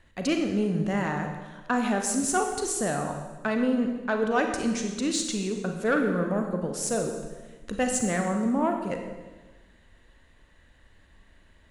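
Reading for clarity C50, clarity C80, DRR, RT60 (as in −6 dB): 5.5 dB, 7.0 dB, 3.5 dB, 1.2 s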